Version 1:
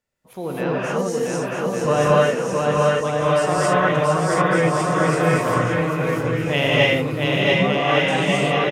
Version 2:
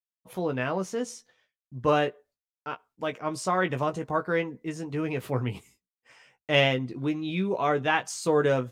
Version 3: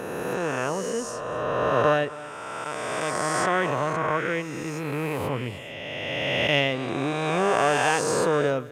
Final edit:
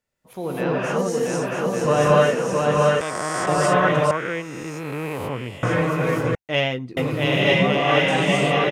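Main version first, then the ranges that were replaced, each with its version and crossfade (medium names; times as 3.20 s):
1
3.01–3.47 s: from 3
4.11–5.63 s: from 3
6.35–6.97 s: from 2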